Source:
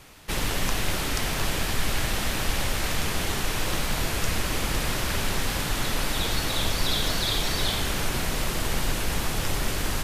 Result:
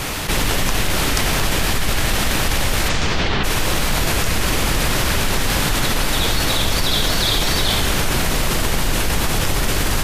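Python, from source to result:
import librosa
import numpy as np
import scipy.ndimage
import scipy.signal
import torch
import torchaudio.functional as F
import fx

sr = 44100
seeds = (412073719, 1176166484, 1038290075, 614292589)

p1 = fx.lowpass(x, sr, hz=fx.line((2.88, 8500.0), (3.43, 3900.0)), slope=24, at=(2.88, 3.43), fade=0.02)
p2 = p1 + fx.echo_single(p1, sr, ms=318, db=-22.5, dry=0)
p3 = fx.env_flatten(p2, sr, amount_pct=70)
y = p3 * 10.0 ** (3.5 / 20.0)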